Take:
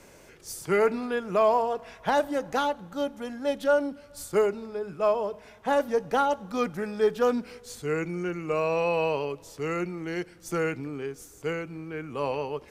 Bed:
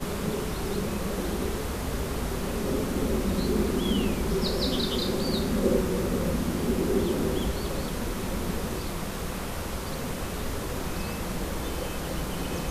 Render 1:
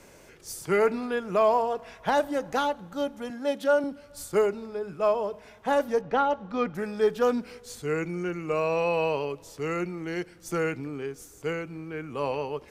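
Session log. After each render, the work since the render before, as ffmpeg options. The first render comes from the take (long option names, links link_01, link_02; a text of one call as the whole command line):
ffmpeg -i in.wav -filter_complex "[0:a]asettb=1/sr,asplit=3[link_01][link_02][link_03];[link_01]atrim=end=3.304[link_04];[link_02]atrim=start=3.3:end=3.84,asetpts=PTS-STARTPTS,afade=type=in:duration=0.004:curve=qsin,afade=type=out:start_time=0.536:duration=0.004:curve=qsin,highpass=frequency=130:width=0.5412,highpass=frequency=130:width=1.3066[link_05];[link_03]atrim=start=3.836[link_06];[link_04][link_05]acrossfade=duration=0.004:curve1=hsin:curve2=qsin[link_07];[link_07][link_06]acrossfade=duration=0.004:curve1=qsin:curve2=hsin,asettb=1/sr,asplit=3[link_08][link_09][link_10];[link_08]atrim=end=6.014[link_11];[link_09]atrim=start=6.01:end=6.75,asetpts=PTS-STARTPTS,afade=type=in:duration=0.004:curve=qsin,afade=type=out:start_time=0.736:duration=0.004:curve=qsin,lowpass=3400[link_12];[link_10]atrim=start=6.746[link_13];[link_11][link_12]acrossfade=duration=0.004:curve1=hsin:curve2=qsin[link_14];[link_14][link_13]acrossfade=duration=0.004:curve1=qsin:curve2=hsin" out.wav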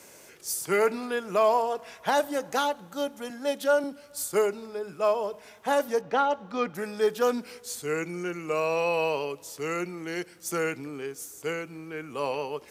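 ffmpeg -i in.wav -af "highpass=frequency=240:poles=1,highshelf=frequency=5400:gain=10.5" out.wav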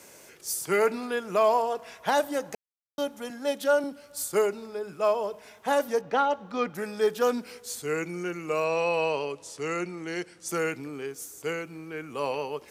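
ffmpeg -i in.wav -filter_complex "[0:a]asettb=1/sr,asplit=3[link_01][link_02][link_03];[link_01]atrim=end=8.644[link_04];[link_02]atrim=start=8.64:end=10.49,asetpts=PTS-STARTPTS,afade=type=in:duration=0.004:curve=qsin,afade=type=out:start_time=1.846:duration=0.004:curve=qsin,lowpass=frequency=9900:width=0.5412,lowpass=frequency=9900:width=1.3066[link_05];[link_03]atrim=start=10.486[link_06];[link_04][link_05]acrossfade=duration=0.004:curve1=hsin:curve2=qsin[link_07];[link_07][link_06]acrossfade=duration=0.004:curve1=qsin:curve2=hsin,asplit=3[link_08][link_09][link_10];[link_08]atrim=end=2.55,asetpts=PTS-STARTPTS,afade=type=out:start_time=2.546:duration=0.004:curve=hsin[link_11];[link_09]atrim=start=2.55:end=2.98,asetpts=PTS-STARTPTS,volume=0[link_12];[link_10]atrim=start=2.98,asetpts=PTS-STARTPTS,afade=type=in:duration=0.004:curve=hsin[link_13];[link_11][link_12][link_13]concat=n=3:v=0:a=1" out.wav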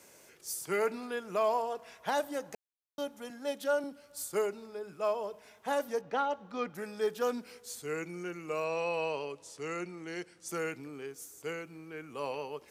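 ffmpeg -i in.wav -af "volume=-7dB" out.wav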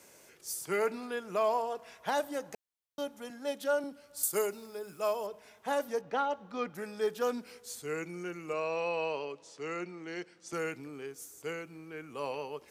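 ffmpeg -i in.wav -filter_complex "[0:a]asettb=1/sr,asplit=3[link_01][link_02][link_03];[link_01]atrim=end=4.234[link_04];[link_02]atrim=start=4.23:end=5.27,asetpts=PTS-STARTPTS,afade=type=in:duration=0.004:curve=qsin,afade=type=out:start_time=1.036:duration=0.004:curve=qsin,aemphasis=mode=production:type=50fm[link_05];[link_03]atrim=start=5.266[link_06];[link_04][link_05]acrossfade=duration=0.004:curve1=hsin:curve2=qsin[link_07];[link_07][link_06]acrossfade=duration=0.004:curve1=qsin:curve2=hsin,asettb=1/sr,asplit=3[link_08][link_09][link_10];[link_08]atrim=end=8.534[link_11];[link_09]atrim=start=8.53:end=10.53,asetpts=PTS-STARTPTS,afade=type=in:duration=0.004:curve=qsin,afade=type=out:start_time=1.996:duration=0.004:curve=qsin,highpass=150,lowpass=5900[link_12];[link_10]atrim=start=10.526[link_13];[link_11][link_12]acrossfade=duration=0.004:curve1=hsin:curve2=qsin[link_14];[link_14][link_13]acrossfade=duration=0.004:curve1=qsin:curve2=hsin" out.wav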